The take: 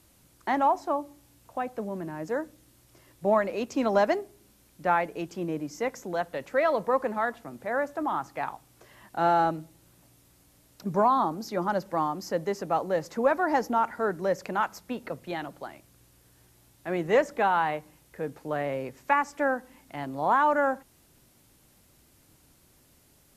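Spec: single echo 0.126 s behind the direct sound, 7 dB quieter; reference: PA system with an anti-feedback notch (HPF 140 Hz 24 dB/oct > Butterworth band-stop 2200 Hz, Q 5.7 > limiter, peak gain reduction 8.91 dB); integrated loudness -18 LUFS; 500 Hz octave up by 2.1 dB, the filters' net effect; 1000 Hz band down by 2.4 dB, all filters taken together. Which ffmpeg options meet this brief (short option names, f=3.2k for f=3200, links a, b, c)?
-af "highpass=f=140:w=0.5412,highpass=f=140:w=1.3066,asuperstop=centerf=2200:order=8:qfactor=5.7,equalizer=f=500:t=o:g=4,equalizer=f=1k:t=o:g=-4.5,aecho=1:1:126:0.447,volume=11.5dB,alimiter=limit=-6.5dB:level=0:latency=1"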